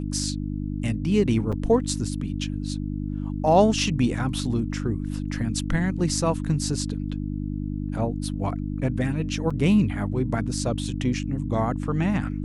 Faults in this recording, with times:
hum 50 Hz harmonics 6 -29 dBFS
1.52–1.53 s: dropout 6 ms
9.50–9.51 s: dropout 5.4 ms

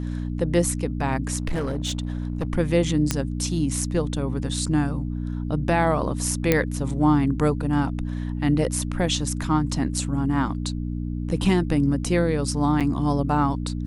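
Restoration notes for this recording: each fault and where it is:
hum 60 Hz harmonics 5 -28 dBFS
1.37–2.47 s: clipped -21.5 dBFS
3.11 s: pop -6 dBFS
6.52 s: pop -4 dBFS
12.80–12.81 s: dropout 7.2 ms

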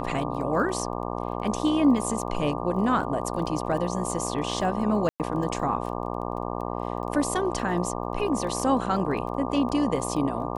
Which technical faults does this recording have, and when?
buzz 60 Hz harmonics 20 -31 dBFS
crackle 16 per s -36 dBFS
5.09–5.20 s: dropout 108 ms

